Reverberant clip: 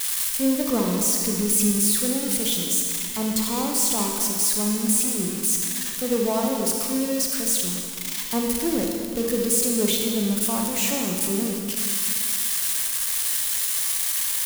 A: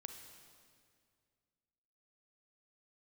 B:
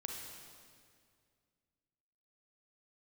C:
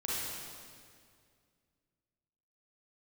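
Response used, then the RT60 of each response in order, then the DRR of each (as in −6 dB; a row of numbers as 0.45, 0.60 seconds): B; 2.1, 2.1, 2.1 seconds; 5.5, 0.5, −7.5 decibels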